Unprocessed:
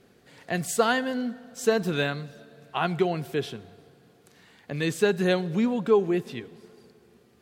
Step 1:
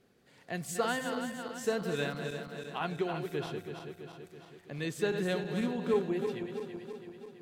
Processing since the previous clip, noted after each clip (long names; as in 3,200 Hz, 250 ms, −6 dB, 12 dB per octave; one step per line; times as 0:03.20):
feedback delay that plays each chunk backwards 165 ms, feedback 76%, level −7 dB
level −9 dB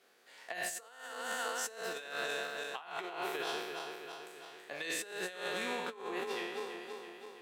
peak hold with a decay on every bin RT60 0.99 s
high-pass filter 690 Hz 12 dB per octave
compressor whose output falls as the input rises −40 dBFS, ratio −0.5
level +1 dB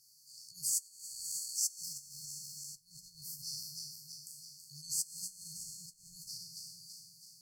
brickwall limiter −31 dBFS, peak gain reduction 7 dB
linear-phase brick-wall band-stop 160–4,300 Hz
level +11.5 dB